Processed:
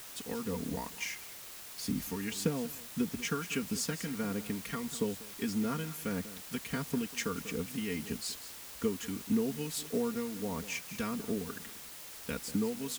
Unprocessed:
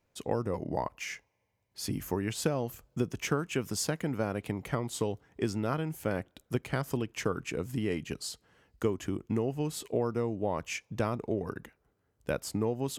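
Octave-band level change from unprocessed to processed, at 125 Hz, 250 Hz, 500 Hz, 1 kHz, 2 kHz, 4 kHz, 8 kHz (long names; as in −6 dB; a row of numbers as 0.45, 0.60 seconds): −6.5, 0.0, −5.5, −6.0, −1.0, +1.0, +1.0 decibels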